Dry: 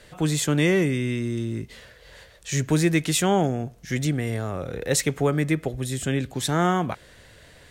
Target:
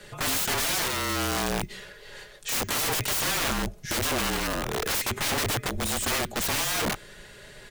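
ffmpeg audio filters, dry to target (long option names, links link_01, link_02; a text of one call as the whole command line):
ffmpeg -i in.wav -af "aecho=1:1:4.7:0.61,aeval=exprs='(mod(16.8*val(0)+1,2)-1)/16.8':channel_layout=same,afreqshift=-35,volume=2.5dB" out.wav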